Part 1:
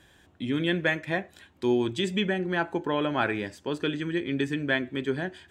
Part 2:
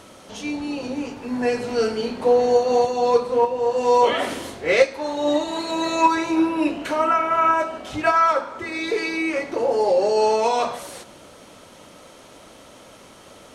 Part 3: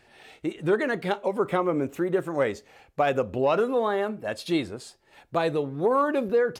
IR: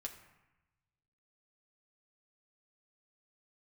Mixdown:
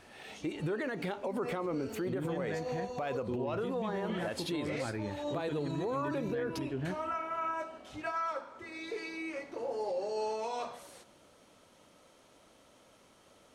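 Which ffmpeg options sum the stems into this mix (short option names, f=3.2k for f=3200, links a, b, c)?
-filter_complex "[0:a]aemphasis=mode=reproduction:type=riaa,adelay=1650,volume=-11dB[a];[1:a]volume=-16dB[b];[2:a]volume=0.5dB[c];[b][c]amix=inputs=2:normalize=0,alimiter=limit=-19.5dB:level=0:latency=1:release=112,volume=0dB[d];[a][d]amix=inputs=2:normalize=0,alimiter=level_in=3dB:limit=-24dB:level=0:latency=1:release=78,volume=-3dB"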